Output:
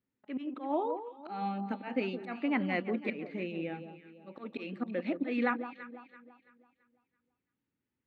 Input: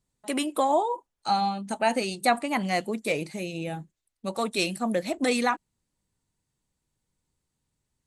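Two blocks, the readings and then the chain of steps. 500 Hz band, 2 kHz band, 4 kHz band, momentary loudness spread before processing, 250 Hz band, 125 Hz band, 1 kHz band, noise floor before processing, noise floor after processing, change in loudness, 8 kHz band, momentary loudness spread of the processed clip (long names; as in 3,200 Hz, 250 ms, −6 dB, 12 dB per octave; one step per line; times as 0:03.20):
−8.5 dB, −7.5 dB, −17.0 dB, 10 LU, −4.0 dB, −6.5 dB, −11.5 dB, −82 dBFS, below −85 dBFS, −8.0 dB, below −40 dB, 16 LU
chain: volume swells 199 ms
loudspeaker in its box 140–2,700 Hz, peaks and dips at 150 Hz −7 dB, 270 Hz +6 dB, 680 Hz −8 dB, 1,000 Hz −7 dB
delay that swaps between a low-pass and a high-pass 167 ms, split 1,200 Hz, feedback 60%, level −9 dB
level −3 dB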